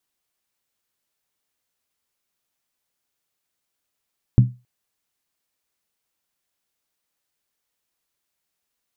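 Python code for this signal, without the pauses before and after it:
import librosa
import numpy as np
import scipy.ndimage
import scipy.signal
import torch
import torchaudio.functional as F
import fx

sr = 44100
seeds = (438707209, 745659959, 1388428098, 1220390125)

y = fx.strike_skin(sr, length_s=0.27, level_db=-5, hz=123.0, decay_s=0.27, tilt_db=9.0, modes=5)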